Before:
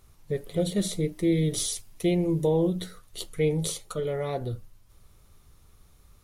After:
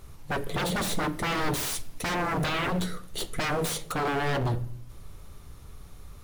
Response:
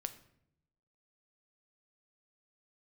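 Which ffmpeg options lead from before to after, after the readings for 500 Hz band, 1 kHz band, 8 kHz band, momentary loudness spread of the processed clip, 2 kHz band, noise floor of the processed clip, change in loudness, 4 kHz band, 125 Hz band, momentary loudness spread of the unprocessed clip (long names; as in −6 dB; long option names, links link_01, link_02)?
−5.0 dB, +11.5 dB, −1.0 dB, 7 LU, +12.5 dB, −46 dBFS, −1.5 dB, +3.0 dB, −2.5 dB, 11 LU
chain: -filter_complex "[0:a]aeval=exprs='0.0266*(abs(mod(val(0)/0.0266+3,4)-2)-1)':channel_layout=same,aeval=exprs='0.0266*(cos(1*acos(clip(val(0)/0.0266,-1,1)))-cos(1*PI/2))+0.000944*(cos(5*acos(clip(val(0)/0.0266,-1,1)))-cos(5*PI/2))':channel_layout=same,asplit=2[link_01][link_02];[1:a]atrim=start_sample=2205,highshelf=frequency=3800:gain=-9.5[link_03];[link_02][link_03]afir=irnorm=-1:irlink=0,volume=7.5dB[link_04];[link_01][link_04]amix=inputs=2:normalize=0"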